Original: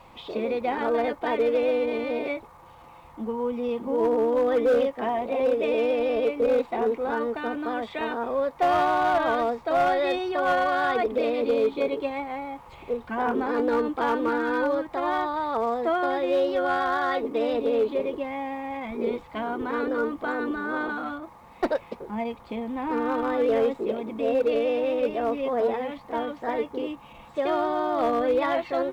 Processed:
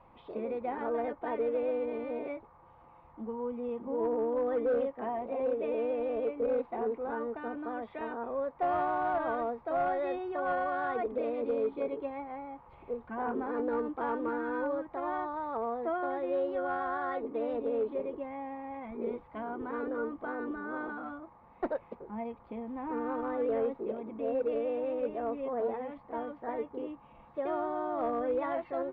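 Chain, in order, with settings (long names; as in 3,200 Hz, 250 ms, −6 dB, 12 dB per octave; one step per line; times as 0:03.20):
low-pass filter 1,600 Hz 12 dB per octave
level −8 dB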